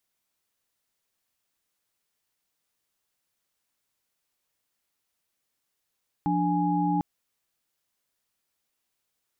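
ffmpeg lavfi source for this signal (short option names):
-f lavfi -i "aevalsrc='0.0473*(sin(2*PI*174.61*t)+sin(2*PI*293.66*t)+sin(2*PI*830.61*t))':d=0.75:s=44100"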